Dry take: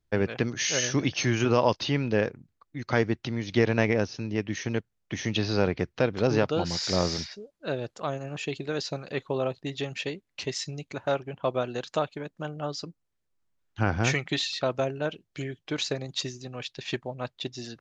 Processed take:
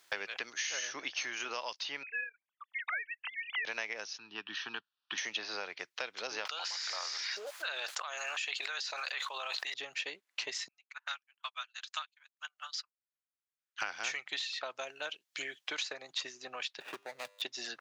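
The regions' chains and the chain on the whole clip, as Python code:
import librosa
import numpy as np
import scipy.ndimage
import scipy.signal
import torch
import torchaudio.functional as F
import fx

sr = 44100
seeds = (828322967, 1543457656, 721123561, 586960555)

y = fx.chain(x, sr, fx.sine_speech(),
    fx.highpass(hz=840.0, slope=24), at=(2.03, 3.65))
y = fx.chain(y, sr, fx.lowpass(hz=3700.0, slope=12),
    fx.fixed_phaser(hz=2100.0, stages=6), at=(4.18, 5.18))
y = fx.chain(y, sr, fx.highpass(hz=1000.0, slope=12),
    fx.env_flatten(amount_pct=100), at=(6.45, 9.74))
y = fx.chain(y, sr, fx.highpass(hz=1200.0, slope=24),
    fx.upward_expand(threshold_db=-55.0, expansion=2.5), at=(10.68, 13.82))
y = fx.chain(y, sr, fx.median_filter(points=41),
    fx.comb_fb(f0_hz=100.0, decay_s=0.79, harmonics='all', damping=0.0, mix_pct=30),
    fx.band_squash(depth_pct=40), at=(16.8, 17.42))
y = scipy.signal.sosfilt(scipy.signal.butter(2, 1000.0, 'highpass', fs=sr, output='sos'), y)
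y = fx.band_squash(y, sr, depth_pct=100)
y = y * 10.0 ** (-6.0 / 20.0)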